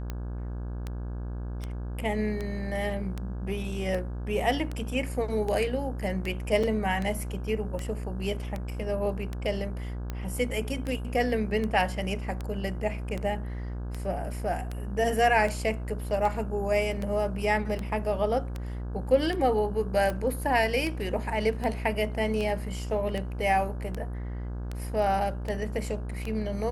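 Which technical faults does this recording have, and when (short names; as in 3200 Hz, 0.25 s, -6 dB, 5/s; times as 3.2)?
buzz 60 Hz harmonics 28 -34 dBFS
tick 78 rpm -20 dBFS
6.63–6.64 gap 5.3 ms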